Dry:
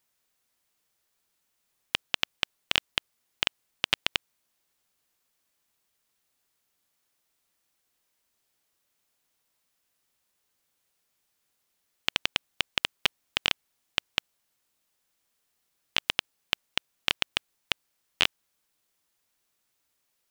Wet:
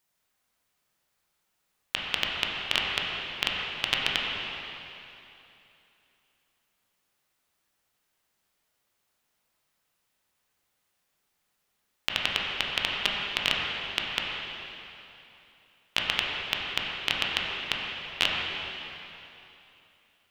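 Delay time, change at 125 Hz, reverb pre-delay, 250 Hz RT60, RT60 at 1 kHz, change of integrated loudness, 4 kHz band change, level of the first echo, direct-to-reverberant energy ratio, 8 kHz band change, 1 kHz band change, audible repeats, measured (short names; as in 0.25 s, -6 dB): none, +3.5 dB, 8 ms, 3.0 s, 3.0 s, +1.0 dB, +1.5 dB, none, -3.0 dB, -1.0 dB, +3.5 dB, none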